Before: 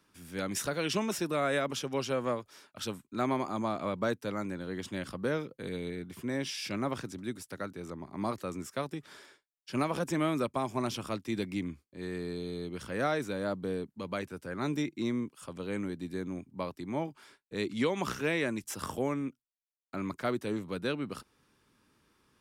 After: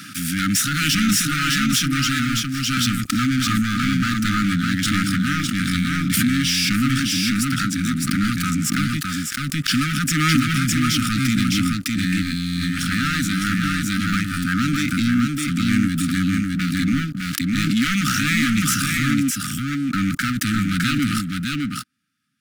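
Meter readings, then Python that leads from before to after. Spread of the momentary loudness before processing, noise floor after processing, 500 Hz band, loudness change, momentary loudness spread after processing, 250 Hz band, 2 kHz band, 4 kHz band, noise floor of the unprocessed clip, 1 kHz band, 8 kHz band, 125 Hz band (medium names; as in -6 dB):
9 LU, -28 dBFS, under -10 dB, +14.5 dB, 5 LU, +16.0 dB, +17.5 dB, +19.5 dB, -80 dBFS, +10.5 dB, +20.5 dB, +18.5 dB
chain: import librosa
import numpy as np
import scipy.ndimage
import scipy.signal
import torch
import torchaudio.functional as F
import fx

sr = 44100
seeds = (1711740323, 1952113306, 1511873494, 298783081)

p1 = scipy.signal.sosfilt(scipy.signal.butter(4, 110.0, 'highpass', fs=sr, output='sos'), x)
p2 = fx.level_steps(p1, sr, step_db=9)
p3 = p1 + (p2 * librosa.db_to_amplitude(0.0))
p4 = fx.leveller(p3, sr, passes=5)
p5 = fx.brickwall_bandstop(p4, sr, low_hz=300.0, high_hz=1200.0)
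p6 = p5 + fx.echo_single(p5, sr, ms=608, db=-3.0, dry=0)
p7 = fx.pre_swell(p6, sr, db_per_s=21.0)
y = p7 * librosa.db_to_amplitude(-1.5)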